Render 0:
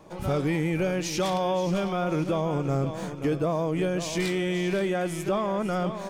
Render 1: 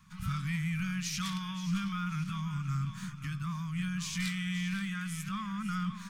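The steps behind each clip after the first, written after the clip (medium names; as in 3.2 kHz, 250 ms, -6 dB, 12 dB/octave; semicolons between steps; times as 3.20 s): elliptic band-stop 200–1200 Hz, stop band 40 dB; trim -3.5 dB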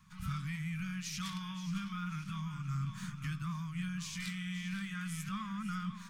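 gain riding 0.5 s; flange 0.84 Hz, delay 0.9 ms, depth 8.2 ms, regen -74%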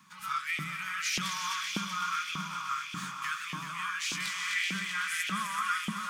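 multi-head delay 127 ms, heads second and third, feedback 68%, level -6.5 dB; LFO high-pass saw up 1.7 Hz 290–2800 Hz; trim +7.5 dB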